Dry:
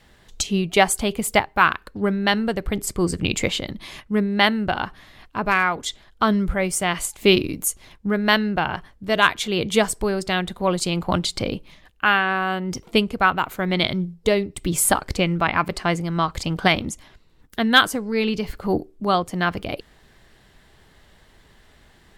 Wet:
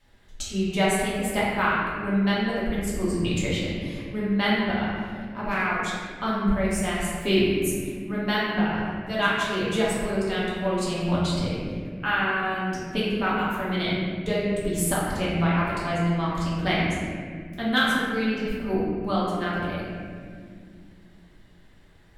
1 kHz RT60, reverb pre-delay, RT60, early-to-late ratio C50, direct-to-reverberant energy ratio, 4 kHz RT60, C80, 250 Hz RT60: 1.6 s, 3 ms, 2.0 s, -2.0 dB, -8.0 dB, 1.2 s, 0.5 dB, 3.7 s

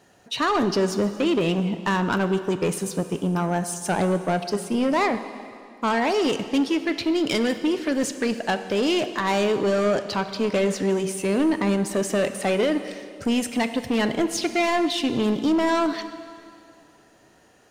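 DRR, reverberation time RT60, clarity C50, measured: 9.5 dB, 2.4 s, 11.0 dB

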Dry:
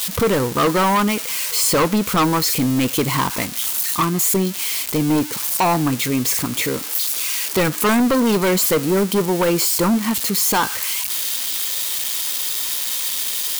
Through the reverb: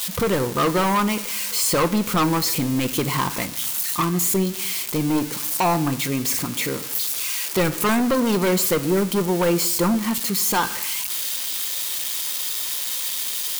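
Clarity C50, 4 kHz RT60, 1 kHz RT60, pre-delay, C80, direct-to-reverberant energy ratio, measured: 16.5 dB, 0.65 s, 0.85 s, 6 ms, 18.5 dB, 10.5 dB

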